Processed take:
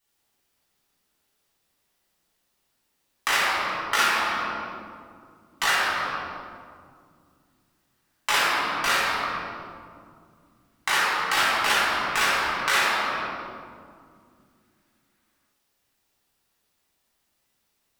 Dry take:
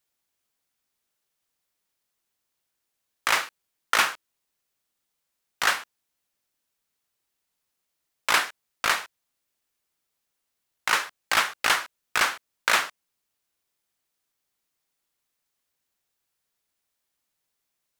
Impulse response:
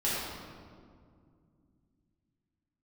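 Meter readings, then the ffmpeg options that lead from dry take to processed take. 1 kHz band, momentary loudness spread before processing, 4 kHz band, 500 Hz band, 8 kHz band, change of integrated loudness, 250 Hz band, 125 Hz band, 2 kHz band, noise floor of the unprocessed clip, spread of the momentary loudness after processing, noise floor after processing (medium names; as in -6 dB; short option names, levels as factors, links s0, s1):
+4.5 dB, 10 LU, +2.5 dB, +5.0 dB, +0.5 dB, +1.5 dB, +8.0 dB, +8.0 dB, +2.5 dB, -81 dBFS, 15 LU, -74 dBFS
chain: -filter_complex "[1:a]atrim=start_sample=2205[s0];[0:a][s0]afir=irnorm=-1:irlink=0,acompressor=threshold=0.0631:ratio=2"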